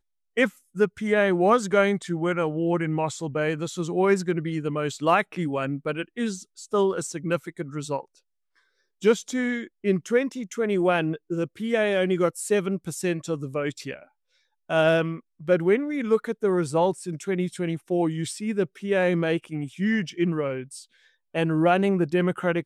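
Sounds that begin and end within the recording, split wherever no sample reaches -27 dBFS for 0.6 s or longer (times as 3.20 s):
9.03–13.94 s
14.71–20.61 s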